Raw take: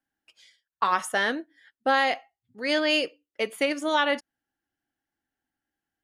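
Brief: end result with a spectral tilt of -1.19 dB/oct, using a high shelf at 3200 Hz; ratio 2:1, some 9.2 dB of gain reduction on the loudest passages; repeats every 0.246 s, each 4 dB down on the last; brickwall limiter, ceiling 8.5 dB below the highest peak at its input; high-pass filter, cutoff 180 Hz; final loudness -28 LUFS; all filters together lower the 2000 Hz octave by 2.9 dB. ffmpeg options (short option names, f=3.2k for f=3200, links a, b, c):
-af "highpass=180,equalizer=f=2k:t=o:g=-5,highshelf=f=3.2k:g=4,acompressor=threshold=-36dB:ratio=2,alimiter=level_in=3dB:limit=-24dB:level=0:latency=1,volume=-3dB,aecho=1:1:246|492|738|984|1230|1476|1722|1968|2214:0.631|0.398|0.25|0.158|0.0994|0.0626|0.0394|0.0249|0.0157,volume=9.5dB"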